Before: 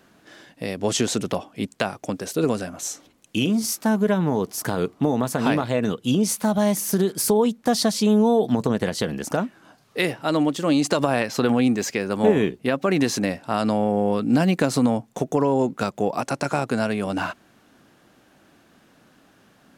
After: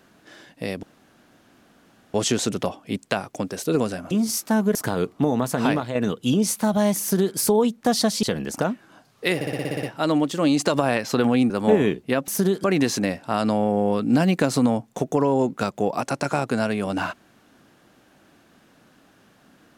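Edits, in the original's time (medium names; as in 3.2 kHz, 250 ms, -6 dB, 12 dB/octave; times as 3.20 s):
0.83 s: insert room tone 1.31 s
2.80–3.46 s: delete
4.10–4.56 s: delete
5.42–5.76 s: fade out equal-power, to -7.5 dB
6.82–7.18 s: copy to 12.84 s
8.04–8.96 s: delete
10.08 s: stutter 0.06 s, 9 plays
11.75–12.06 s: delete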